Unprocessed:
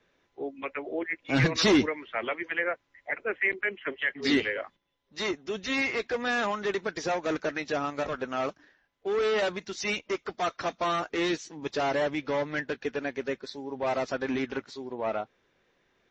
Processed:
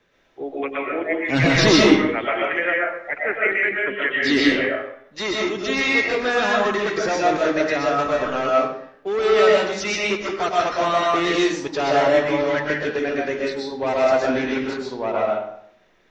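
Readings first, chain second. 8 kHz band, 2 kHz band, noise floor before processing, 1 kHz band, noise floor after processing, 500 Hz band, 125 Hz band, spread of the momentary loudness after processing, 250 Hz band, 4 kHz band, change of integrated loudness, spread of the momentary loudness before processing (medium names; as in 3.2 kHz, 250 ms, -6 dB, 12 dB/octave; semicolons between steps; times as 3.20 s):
no reading, +9.0 dB, -73 dBFS, +10.5 dB, -54 dBFS, +10.5 dB, +7.5 dB, 10 LU, +9.0 dB, +9.0 dB, +9.5 dB, 10 LU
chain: algorithmic reverb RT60 0.7 s, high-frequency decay 0.7×, pre-delay 85 ms, DRR -3.5 dB; trim +4.5 dB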